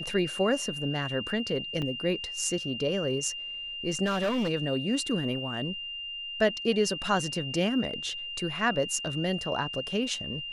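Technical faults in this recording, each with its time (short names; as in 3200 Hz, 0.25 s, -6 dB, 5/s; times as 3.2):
tone 2800 Hz -35 dBFS
1.82–1.83 gap 5.5 ms
4.05–4.5 clipped -24 dBFS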